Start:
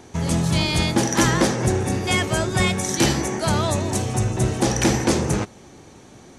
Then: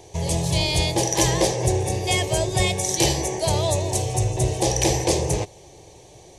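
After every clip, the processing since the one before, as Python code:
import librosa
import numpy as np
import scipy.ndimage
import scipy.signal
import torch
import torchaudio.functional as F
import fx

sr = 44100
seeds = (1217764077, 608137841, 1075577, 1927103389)

y = fx.fixed_phaser(x, sr, hz=570.0, stages=4)
y = y * librosa.db_to_amplitude(2.5)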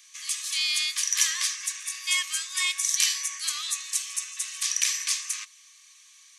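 y = scipy.signal.sosfilt(scipy.signal.cheby1(10, 1.0, 1100.0, 'highpass', fs=sr, output='sos'), x)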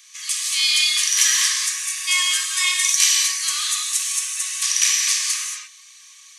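y = fx.rev_gated(x, sr, seeds[0], gate_ms=250, shape='flat', drr_db=-1.0)
y = y * librosa.db_to_amplitude(4.5)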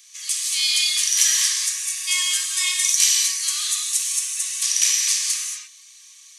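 y = fx.high_shelf(x, sr, hz=2300.0, db=11.5)
y = y * librosa.db_to_amplitude(-10.5)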